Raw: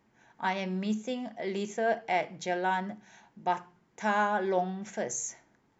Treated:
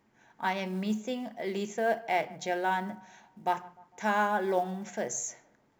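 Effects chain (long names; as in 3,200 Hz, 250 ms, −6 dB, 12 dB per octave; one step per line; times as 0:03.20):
floating-point word with a short mantissa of 4 bits
mains-hum notches 60/120/180 Hz
feedback echo with a band-pass in the loop 151 ms, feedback 49%, band-pass 820 Hz, level −20 dB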